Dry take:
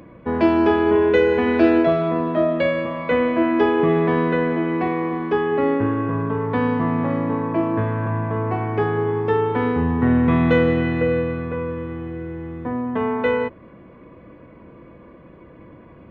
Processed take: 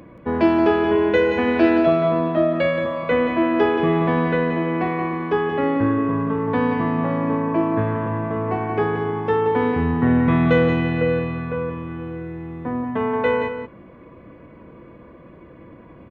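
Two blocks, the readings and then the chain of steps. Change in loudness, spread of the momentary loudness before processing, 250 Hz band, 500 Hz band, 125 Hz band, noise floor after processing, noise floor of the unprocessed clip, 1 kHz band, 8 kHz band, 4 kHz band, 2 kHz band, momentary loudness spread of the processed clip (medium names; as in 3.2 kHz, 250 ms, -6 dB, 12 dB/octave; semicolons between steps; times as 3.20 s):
0.0 dB, 10 LU, 0.0 dB, -0.5 dB, -0.5 dB, -45 dBFS, -45 dBFS, +0.5 dB, no reading, +1.0 dB, +0.5 dB, 10 LU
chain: on a send: delay 177 ms -8 dB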